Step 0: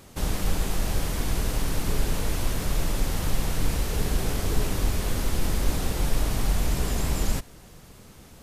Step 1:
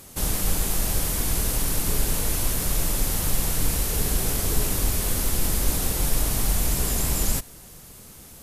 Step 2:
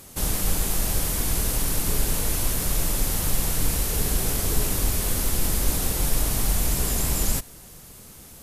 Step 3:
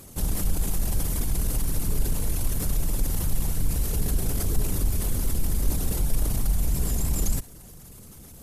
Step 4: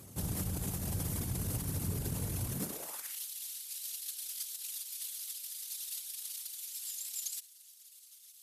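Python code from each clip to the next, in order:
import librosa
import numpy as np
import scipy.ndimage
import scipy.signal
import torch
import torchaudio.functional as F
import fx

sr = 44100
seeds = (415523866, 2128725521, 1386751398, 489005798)

y1 = fx.peak_eq(x, sr, hz=12000.0, db=13.0, octaves=1.5)
y2 = y1
y3 = fx.envelope_sharpen(y2, sr, power=1.5)
y4 = fx.filter_sweep_highpass(y3, sr, from_hz=100.0, to_hz=3600.0, start_s=2.48, end_s=3.21, q=1.7)
y4 = F.gain(torch.from_numpy(y4), -7.0).numpy()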